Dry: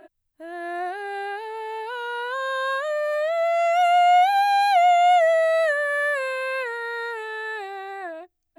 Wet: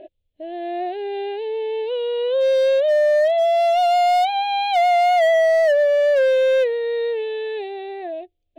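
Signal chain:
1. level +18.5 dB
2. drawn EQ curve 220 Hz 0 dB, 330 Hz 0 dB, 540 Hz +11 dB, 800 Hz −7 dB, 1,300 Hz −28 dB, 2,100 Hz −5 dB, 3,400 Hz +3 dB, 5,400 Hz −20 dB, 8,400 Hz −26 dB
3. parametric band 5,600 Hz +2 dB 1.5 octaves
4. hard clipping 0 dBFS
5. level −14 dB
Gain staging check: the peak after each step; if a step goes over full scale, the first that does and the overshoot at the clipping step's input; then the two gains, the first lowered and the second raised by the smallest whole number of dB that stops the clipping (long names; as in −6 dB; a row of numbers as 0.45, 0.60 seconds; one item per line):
+8.0, +7.0, +7.0, 0.0, −14.0 dBFS
step 1, 7.0 dB
step 1 +11.5 dB, step 5 −7 dB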